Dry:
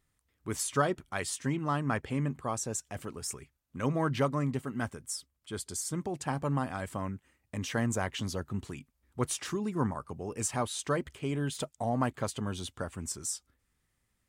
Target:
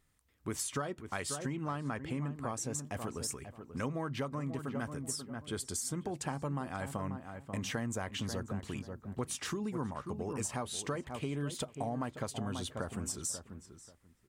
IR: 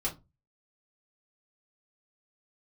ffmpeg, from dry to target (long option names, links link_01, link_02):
-filter_complex "[0:a]asplit=2[link_01][link_02];[link_02]adelay=537,lowpass=frequency=1600:poles=1,volume=-11dB,asplit=2[link_03][link_04];[link_04]adelay=537,lowpass=frequency=1600:poles=1,volume=0.17[link_05];[link_03][link_05]amix=inputs=2:normalize=0[link_06];[link_01][link_06]amix=inputs=2:normalize=0,acompressor=threshold=-36dB:ratio=6,asplit=2[link_07][link_08];[1:a]atrim=start_sample=2205[link_09];[link_08][link_09]afir=irnorm=-1:irlink=0,volume=-26dB[link_10];[link_07][link_10]amix=inputs=2:normalize=0,volume=2dB"